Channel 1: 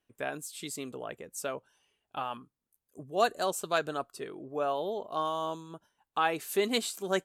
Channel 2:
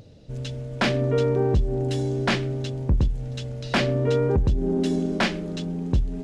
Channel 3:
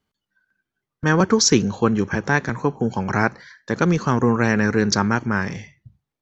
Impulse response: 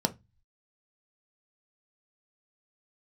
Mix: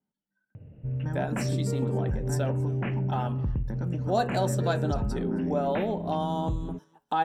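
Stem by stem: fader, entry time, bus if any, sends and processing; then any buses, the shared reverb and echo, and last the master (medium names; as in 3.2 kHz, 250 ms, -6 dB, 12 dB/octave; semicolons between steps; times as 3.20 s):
+3.0 dB, 0.95 s, bus A, send -7 dB, echo send -22 dB, de-hum 140.7 Hz, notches 21
-7.0 dB, 0.55 s, no bus, no send, no echo send, Chebyshev low-pass 2.8 kHz, order 6; peaking EQ 110 Hz +13 dB 2 oct; peak limiter -11 dBFS, peak gain reduction 8.5 dB
-14.0 dB, 0.00 s, bus A, send -7.5 dB, no echo send, treble shelf 3.8 kHz -9 dB; compression 2.5:1, threshold -27 dBFS, peak gain reduction 11 dB
bus A: 0.0 dB, level held to a coarse grid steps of 17 dB; peak limiter -28.5 dBFS, peak gain reduction 7.5 dB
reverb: on, RT60 0.20 s, pre-delay 3 ms
echo: delay 268 ms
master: compression 1.5:1, threshold -32 dBFS, peak gain reduction 6.5 dB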